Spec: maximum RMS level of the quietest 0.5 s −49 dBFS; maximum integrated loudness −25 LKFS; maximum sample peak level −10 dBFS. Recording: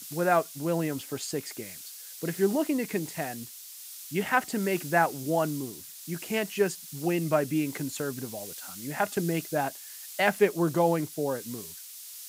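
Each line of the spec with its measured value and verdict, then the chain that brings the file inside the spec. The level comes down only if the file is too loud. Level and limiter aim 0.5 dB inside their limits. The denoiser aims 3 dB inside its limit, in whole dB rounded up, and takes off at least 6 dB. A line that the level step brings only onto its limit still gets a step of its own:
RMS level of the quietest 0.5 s −45 dBFS: out of spec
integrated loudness −29.0 LKFS: in spec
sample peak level −8.5 dBFS: out of spec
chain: broadband denoise 7 dB, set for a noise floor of −45 dBFS
brickwall limiter −10.5 dBFS

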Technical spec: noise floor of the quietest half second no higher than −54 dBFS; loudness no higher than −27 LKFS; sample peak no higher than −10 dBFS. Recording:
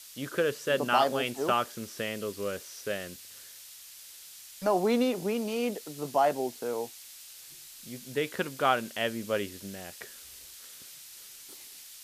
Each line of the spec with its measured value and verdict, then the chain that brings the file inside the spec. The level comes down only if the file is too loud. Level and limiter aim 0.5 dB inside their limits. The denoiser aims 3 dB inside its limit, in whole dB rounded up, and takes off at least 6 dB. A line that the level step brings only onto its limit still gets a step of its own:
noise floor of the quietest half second −49 dBFS: out of spec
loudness −30.5 LKFS: in spec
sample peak −10.5 dBFS: in spec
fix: broadband denoise 8 dB, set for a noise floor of −49 dBFS

